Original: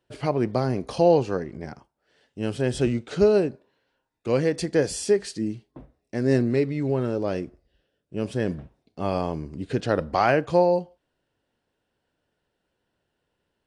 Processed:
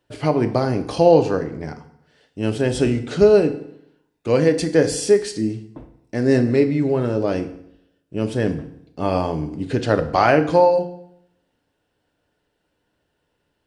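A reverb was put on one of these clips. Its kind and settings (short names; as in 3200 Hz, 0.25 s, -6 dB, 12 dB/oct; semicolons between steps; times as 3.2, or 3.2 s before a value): FDN reverb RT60 0.73 s, low-frequency decay 1.1×, high-frequency decay 0.85×, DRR 7.5 dB; gain +4.5 dB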